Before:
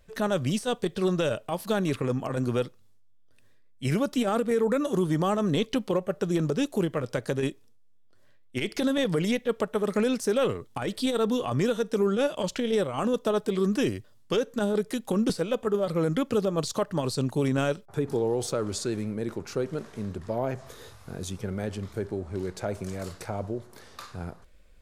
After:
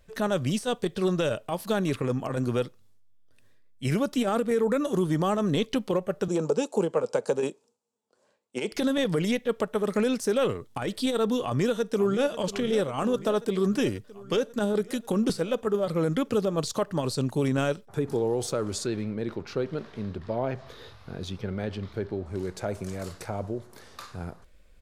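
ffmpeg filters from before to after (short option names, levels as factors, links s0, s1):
-filter_complex "[0:a]asettb=1/sr,asplit=3[s0][s1][s2];[s0]atrim=end=6.284[s3];[s1]atrim=start=6.28:end=8.72,asetpts=PTS-STARTPTS,afade=t=in:d=0.004:c=qsin,afade=t=out:st=2.436:d=0.004:c=qsin,highpass=f=180:w=0.5412,highpass=f=180:w=1.3066,equalizer=f=290:t=q:w=4:g=-6,equalizer=f=480:t=q:w=4:g=8,equalizer=f=880:t=q:w=4:g=9,equalizer=f=1900:t=q:w=4:g=-10,equalizer=f=3400:t=q:w=4:g=-6,equalizer=f=7400:t=q:w=4:g=6,lowpass=f=9700:w=0.5412,lowpass=f=9700:w=1.3066[s4];[s2]atrim=start=8.716[s5];[s3][s4]acrossfade=d=0.004:c1=hsin:c2=qsin[s6];[s6][s5]acrossfade=d=0.004:c1=qsin:c2=hsin,asplit=2[s7][s8];[s8]afade=t=in:st=11.44:d=0.01,afade=t=out:st=12.31:d=0.01,aecho=0:1:540|1080|1620|2160|2700|3240|3780|4320|4860|5400|5940:0.199526|0.149645|0.112234|0.0841751|0.0631313|0.0473485|0.0355114|0.0266335|0.0199752|0.0149814|0.011236[s9];[s7][s9]amix=inputs=2:normalize=0,asettb=1/sr,asplit=3[s10][s11][s12];[s10]atrim=end=18.864[s13];[s11]atrim=start=18.86:end=22.26,asetpts=PTS-STARTPTS,afade=t=in:d=0.004:c=qsin,afade=t=out:st=3.396:d=0.004:c=qsin,highshelf=f=5700:t=q:w=1.5:g=-11[s14];[s12]atrim=start=22.256[s15];[s13][s14]acrossfade=d=0.004:c1=hsin:c2=qsin[s16];[s16][s15]acrossfade=d=0.004:c1=qsin:c2=hsin"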